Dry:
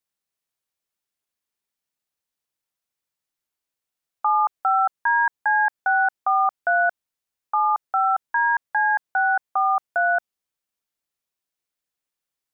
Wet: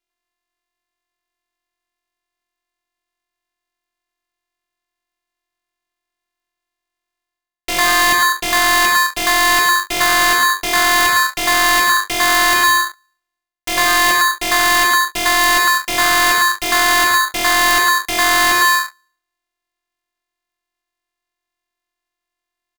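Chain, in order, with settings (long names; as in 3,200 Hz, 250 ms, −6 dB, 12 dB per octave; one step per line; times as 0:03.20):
samples sorted by size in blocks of 128 samples
mains-hum notches 50/100/150/200/250/300/350 Hz
reversed playback
downward compressor 10 to 1, threshold −33 dBFS, peak gain reduction 16.5 dB
reversed playback
tempo change 0.55×
in parallel at −2.5 dB: fuzz pedal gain 44 dB, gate −53 dBFS
on the sum: multiband delay without the direct sound highs, lows 100 ms, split 650 Hz
ring modulator with a square carrier 1,400 Hz
level +4.5 dB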